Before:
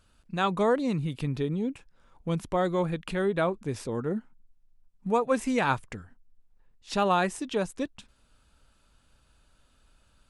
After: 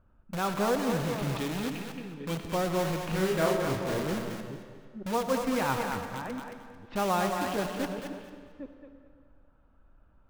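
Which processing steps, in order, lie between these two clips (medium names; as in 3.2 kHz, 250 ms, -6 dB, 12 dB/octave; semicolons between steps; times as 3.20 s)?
chunks repeated in reverse 457 ms, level -12 dB; 1.36–2.42 s: frequency weighting D; level-controlled noise filter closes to 1.2 kHz, open at -21.5 dBFS; peaking EQ 8.2 kHz -14.5 dB 2.2 oct; band-stop 440 Hz, Q 12; in parallel at -3.5 dB: integer overflow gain 29.5 dB; 3.02–4.03 s: on the sum: doubling 37 ms -2 dB; thinning echo 222 ms, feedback 21%, high-pass 420 Hz, level -5 dB; on a send at -7.5 dB: reverberation RT60 1.9 s, pre-delay 40 ms; on the sum: trim -3 dB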